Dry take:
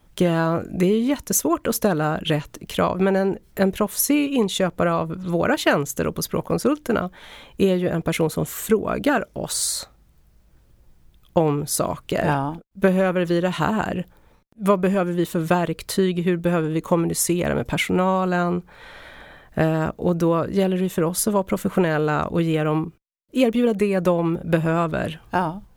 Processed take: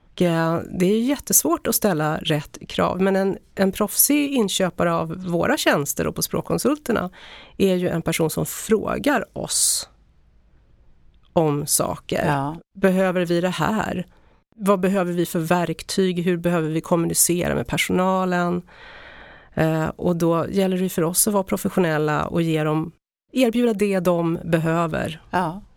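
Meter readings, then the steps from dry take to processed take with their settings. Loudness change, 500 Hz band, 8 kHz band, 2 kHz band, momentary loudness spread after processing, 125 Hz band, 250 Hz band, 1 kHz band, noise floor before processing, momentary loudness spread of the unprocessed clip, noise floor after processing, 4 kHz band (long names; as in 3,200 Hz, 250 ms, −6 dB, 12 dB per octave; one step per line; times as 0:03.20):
+1.0 dB, 0.0 dB, +5.0 dB, +1.0 dB, 7 LU, 0.0 dB, 0.0 dB, +0.5 dB, −56 dBFS, 6 LU, −56 dBFS, +2.5 dB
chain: low-pass that shuts in the quiet parts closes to 2,800 Hz, open at −20 dBFS
high-shelf EQ 4,700 Hz +7 dB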